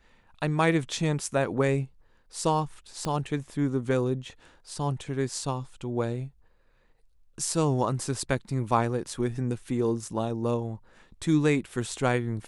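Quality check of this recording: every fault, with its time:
3.05 s: pop -17 dBFS

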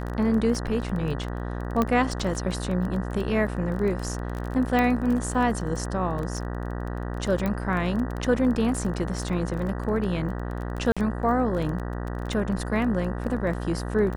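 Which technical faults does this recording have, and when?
buzz 60 Hz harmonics 32 -31 dBFS
crackle 18 per s -30 dBFS
1.82 s: pop -11 dBFS
4.79 s: pop -12 dBFS
7.46 s: pop -15 dBFS
10.92–10.97 s: dropout 46 ms

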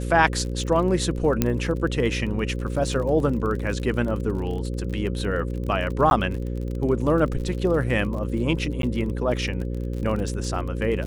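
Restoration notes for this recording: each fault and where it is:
buzz 60 Hz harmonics 9 -28 dBFS
crackle 36 per s -31 dBFS
1.42 s: pop -6 dBFS
6.10–6.11 s: dropout 11 ms
8.82–8.83 s: dropout 12 ms

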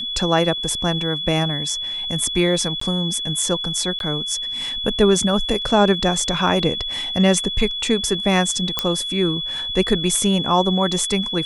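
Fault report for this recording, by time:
whine 3.4 kHz -24 dBFS
2.80–2.81 s: dropout 14 ms
3.99–4.00 s: dropout 12 ms
8.79 s: pop -3 dBFS

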